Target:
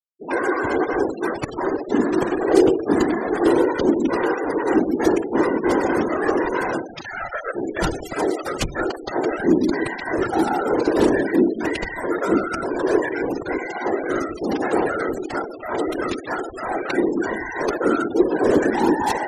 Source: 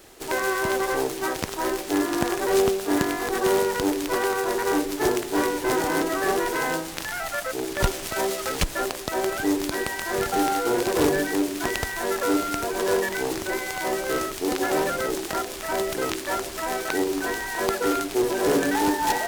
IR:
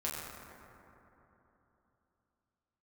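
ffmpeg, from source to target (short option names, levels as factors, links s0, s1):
-filter_complex "[0:a]asplit=2[s0][s1];[1:a]atrim=start_sample=2205,atrim=end_sample=4410,asetrate=24696,aresample=44100[s2];[s1][s2]afir=irnorm=-1:irlink=0,volume=0.224[s3];[s0][s3]amix=inputs=2:normalize=0,afftfilt=real='hypot(re,im)*cos(2*PI*random(0))':imag='hypot(re,im)*sin(2*PI*random(1))':win_size=512:overlap=0.75,adynamicequalizer=threshold=0.0141:dfrequency=340:dqfactor=2.3:tfrequency=340:tqfactor=2.3:attack=5:release=100:ratio=0.375:range=2.5:mode=boostabove:tftype=bell,afftfilt=real='re*gte(hypot(re,im),0.0224)':imag='im*gte(hypot(re,im),0.0224)':win_size=1024:overlap=0.75,volume=1.88"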